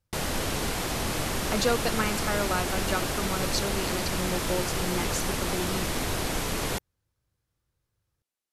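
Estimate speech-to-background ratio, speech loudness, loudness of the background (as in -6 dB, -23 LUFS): -2.0 dB, -31.5 LUFS, -29.5 LUFS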